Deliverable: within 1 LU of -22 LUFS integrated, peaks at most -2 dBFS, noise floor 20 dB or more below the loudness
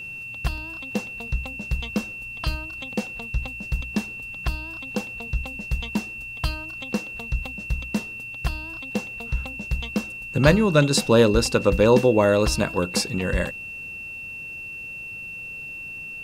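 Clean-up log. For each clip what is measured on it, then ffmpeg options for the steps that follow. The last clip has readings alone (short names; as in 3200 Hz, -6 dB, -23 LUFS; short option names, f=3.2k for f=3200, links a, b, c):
steady tone 2700 Hz; tone level -33 dBFS; loudness -25.0 LUFS; peak -1.0 dBFS; loudness target -22.0 LUFS
-> -af "bandreject=f=2.7k:w=30"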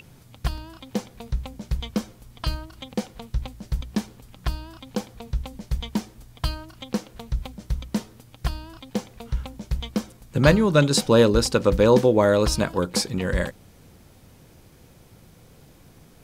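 steady tone none; loudness -24.5 LUFS; peak -1.5 dBFS; loudness target -22.0 LUFS
-> -af "volume=2.5dB,alimiter=limit=-2dB:level=0:latency=1"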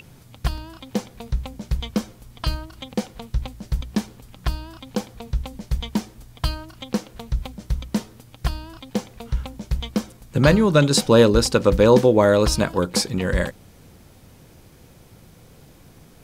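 loudness -22.5 LUFS; peak -2.0 dBFS; noise floor -49 dBFS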